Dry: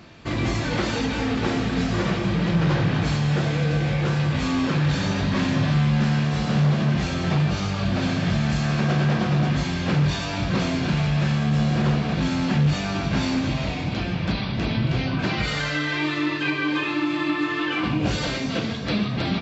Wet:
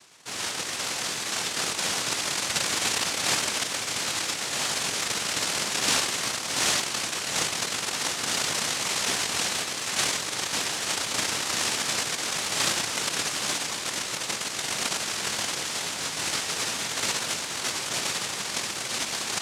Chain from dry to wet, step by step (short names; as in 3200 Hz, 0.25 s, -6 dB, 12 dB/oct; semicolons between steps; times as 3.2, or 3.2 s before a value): echo with dull and thin repeats by turns 0.117 s, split 920 Hz, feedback 85%, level -4 dB; noise vocoder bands 1; gain -8 dB